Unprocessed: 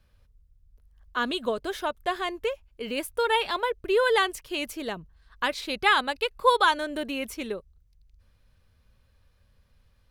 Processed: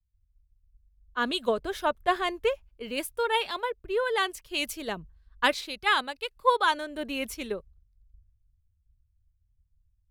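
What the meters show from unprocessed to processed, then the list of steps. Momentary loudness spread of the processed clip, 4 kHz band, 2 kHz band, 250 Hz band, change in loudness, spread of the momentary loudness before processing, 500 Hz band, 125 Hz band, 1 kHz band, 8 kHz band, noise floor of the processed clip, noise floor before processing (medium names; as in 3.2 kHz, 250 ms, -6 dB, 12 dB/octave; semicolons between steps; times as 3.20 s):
10 LU, -1.5 dB, -2.0 dB, -2.0 dB, -2.0 dB, 12 LU, -2.0 dB, -0.5 dB, -2.0 dB, 0.0 dB, -72 dBFS, -64 dBFS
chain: gain riding within 4 dB 0.5 s; three bands expanded up and down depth 100%; trim -2.5 dB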